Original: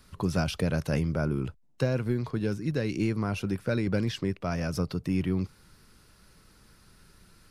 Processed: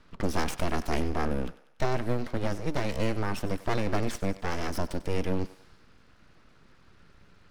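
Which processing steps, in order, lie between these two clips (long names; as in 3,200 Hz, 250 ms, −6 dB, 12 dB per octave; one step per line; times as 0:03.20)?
low-pass that shuts in the quiet parts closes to 2,700 Hz, open at −26 dBFS
full-wave rectification
feedback echo with a high-pass in the loop 96 ms, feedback 54%, high-pass 500 Hz, level −15.5 dB
level +2 dB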